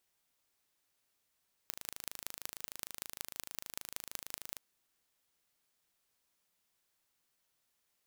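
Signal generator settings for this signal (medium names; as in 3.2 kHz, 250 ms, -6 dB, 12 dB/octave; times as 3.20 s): pulse train 26.5 per s, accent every 5, -10.5 dBFS 2.90 s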